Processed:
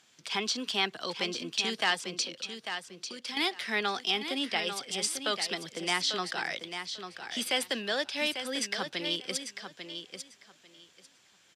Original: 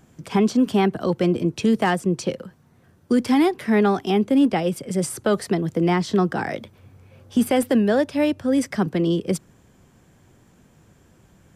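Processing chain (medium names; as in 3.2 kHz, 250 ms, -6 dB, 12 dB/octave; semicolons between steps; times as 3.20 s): 2.18–3.37 s: compression 4:1, threshold -27 dBFS, peak gain reduction 11 dB; band-pass filter 4 kHz, Q 1.6; on a send: feedback delay 845 ms, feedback 18%, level -8.5 dB; on the sum: trim +7.5 dB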